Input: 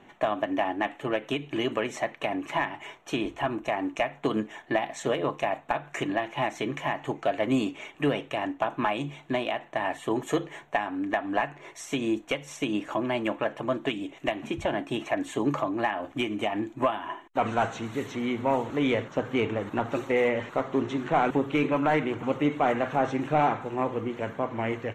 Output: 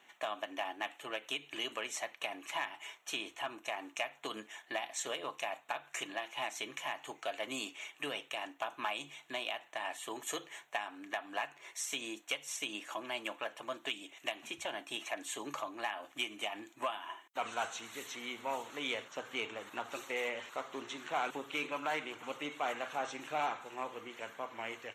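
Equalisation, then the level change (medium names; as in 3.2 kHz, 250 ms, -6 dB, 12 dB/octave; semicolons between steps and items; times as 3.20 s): treble shelf 4.2 kHz -6.5 dB; dynamic bell 1.9 kHz, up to -5 dB, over -46 dBFS, Q 3.1; differentiator; +8.0 dB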